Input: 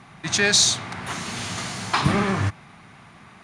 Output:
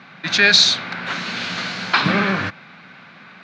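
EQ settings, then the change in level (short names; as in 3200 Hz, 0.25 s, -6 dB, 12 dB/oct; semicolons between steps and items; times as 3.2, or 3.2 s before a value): speaker cabinet 160–4600 Hz, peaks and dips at 180 Hz +7 dB, 260 Hz +5 dB, 530 Hz +9 dB, 1500 Hz +10 dB, 2400 Hz +5 dB, 4100 Hz +4 dB; high shelf 2400 Hz +9 dB; -1.5 dB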